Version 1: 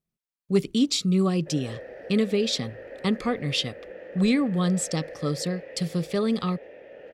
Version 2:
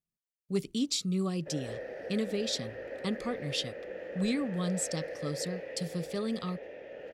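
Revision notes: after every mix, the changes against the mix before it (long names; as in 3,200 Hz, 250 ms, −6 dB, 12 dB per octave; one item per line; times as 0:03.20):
speech −9.5 dB
master: add bass and treble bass +1 dB, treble +6 dB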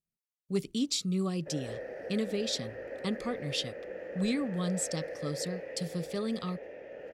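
background: add parametric band 3,600 Hz −7.5 dB 0.71 octaves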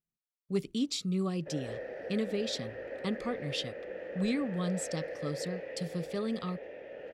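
background: add parametric band 3,600 Hz +7.5 dB 0.71 octaves
master: add bass and treble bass −1 dB, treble −6 dB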